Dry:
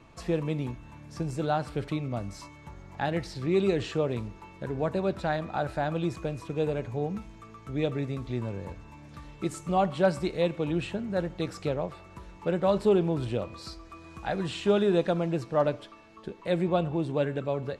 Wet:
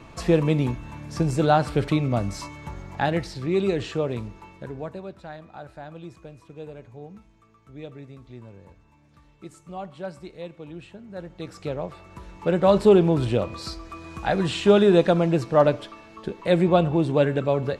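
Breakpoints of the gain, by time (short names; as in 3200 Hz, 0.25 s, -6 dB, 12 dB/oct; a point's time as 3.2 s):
2.77 s +9 dB
3.45 s +2 dB
4.48 s +2 dB
5.13 s -10.5 dB
10.97 s -10.5 dB
11.72 s 0 dB
12.75 s +7.5 dB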